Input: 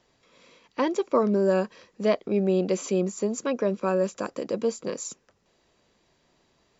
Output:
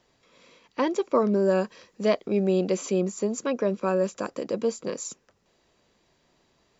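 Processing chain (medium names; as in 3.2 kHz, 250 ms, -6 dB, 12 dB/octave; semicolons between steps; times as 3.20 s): 1.59–2.68 s: treble shelf 5.4 kHz -> 4.1 kHz +5.5 dB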